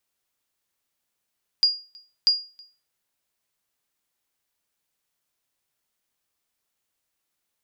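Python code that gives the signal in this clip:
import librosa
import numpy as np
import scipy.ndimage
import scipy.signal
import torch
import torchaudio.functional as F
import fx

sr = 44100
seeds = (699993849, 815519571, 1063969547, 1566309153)

y = fx.sonar_ping(sr, hz=4840.0, decay_s=0.34, every_s=0.64, pings=2, echo_s=0.32, echo_db=-28.5, level_db=-11.0)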